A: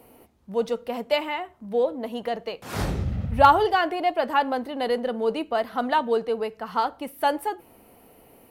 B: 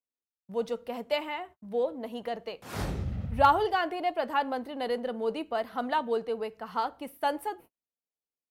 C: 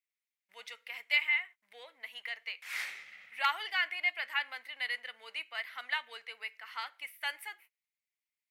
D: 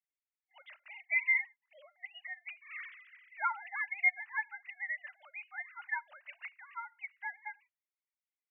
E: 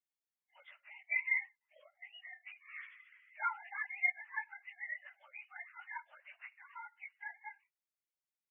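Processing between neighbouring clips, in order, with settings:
gate -42 dBFS, range -47 dB; gain -6 dB
resonant high-pass 2100 Hz, resonance Q 5.8; gain -2 dB
sine-wave speech; gain -1.5 dB
phase scrambler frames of 50 ms; gain -4.5 dB

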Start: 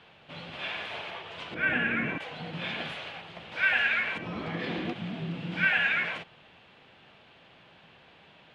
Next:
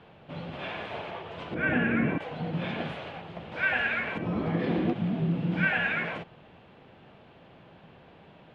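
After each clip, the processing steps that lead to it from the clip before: tilt shelf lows +8 dB, about 1300 Hz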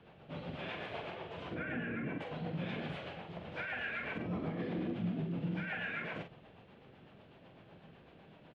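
limiter -26 dBFS, peak gain reduction 11.5 dB; rotary speaker horn 8 Hz; doubler 45 ms -7 dB; gain -3.5 dB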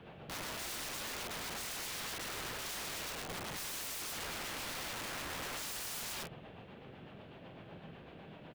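wrapped overs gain 43 dB; gain +6 dB

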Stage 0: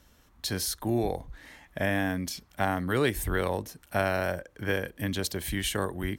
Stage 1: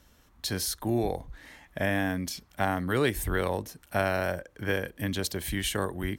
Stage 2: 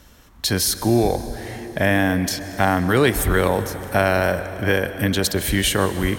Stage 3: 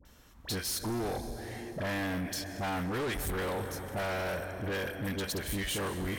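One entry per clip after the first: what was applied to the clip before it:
nothing audible
in parallel at -0.5 dB: limiter -19 dBFS, peak gain reduction 7 dB; on the sum: plate-style reverb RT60 4.8 s, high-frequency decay 0.65×, pre-delay 0.115 s, DRR 11.5 dB; gain +5 dB
dispersion highs, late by 53 ms, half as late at 1100 Hz; soft clip -22 dBFS, distortion -8 dB; gain -8.5 dB

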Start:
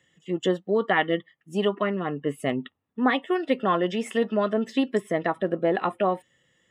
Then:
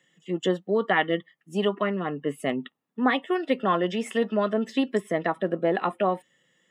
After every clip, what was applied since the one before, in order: Chebyshev high-pass 160 Hz, order 3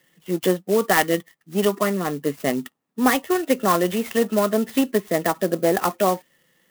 clock jitter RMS 0.049 ms; gain +4.5 dB

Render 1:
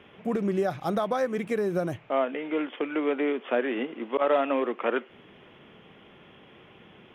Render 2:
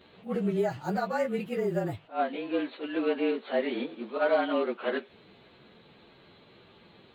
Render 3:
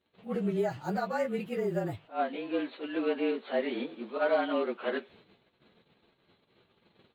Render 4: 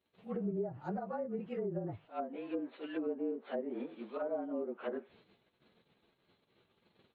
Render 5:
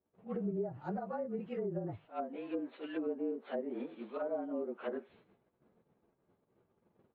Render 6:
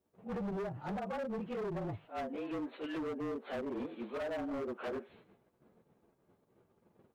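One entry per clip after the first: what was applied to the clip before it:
inharmonic rescaling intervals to 108%; attack slew limiter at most 260 dB/s
gate -54 dBFS, range -20 dB; gain -2 dB
treble ducked by the level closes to 510 Hz, closed at -26.5 dBFS; wow and flutter 20 cents; gain -5.5 dB
low-pass opened by the level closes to 940 Hz, open at -36 dBFS
hard clip -39.5 dBFS, distortion -7 dB; gain +4 dB

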